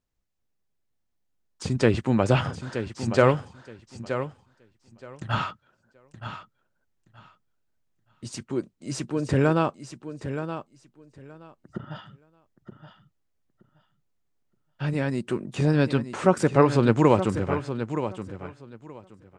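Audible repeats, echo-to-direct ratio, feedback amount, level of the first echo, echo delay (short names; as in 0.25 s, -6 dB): 2, -10.0 dB, 18%, -10.0 dB, 0.923 s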